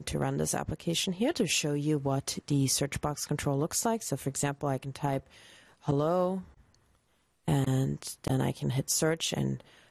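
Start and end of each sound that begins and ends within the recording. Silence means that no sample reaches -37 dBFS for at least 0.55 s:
5.88–6.40 s

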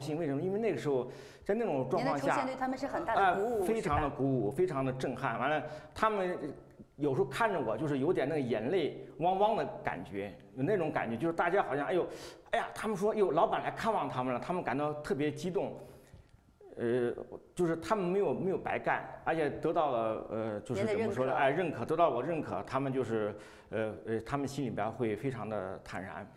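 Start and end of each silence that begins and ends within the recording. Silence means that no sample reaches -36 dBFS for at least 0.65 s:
15.72–16.77 s

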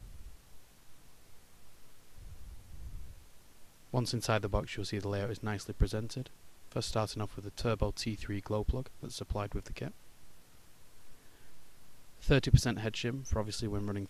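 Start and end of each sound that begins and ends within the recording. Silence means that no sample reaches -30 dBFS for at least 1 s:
3.94–9.88 s

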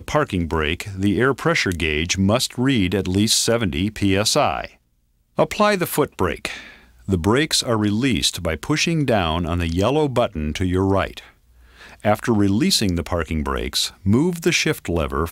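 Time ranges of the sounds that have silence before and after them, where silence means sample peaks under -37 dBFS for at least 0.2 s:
5.38–6.76 s
7.08–11.29 s

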